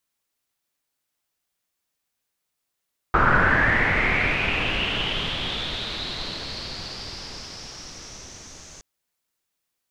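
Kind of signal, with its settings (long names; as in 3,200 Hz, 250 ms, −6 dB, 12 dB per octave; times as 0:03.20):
filter sweep on noise pink, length 5.67 s lowpass, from 1,300 Hz, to 6,400 Hz, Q 6.4, linear, gain ramp −27.5 dB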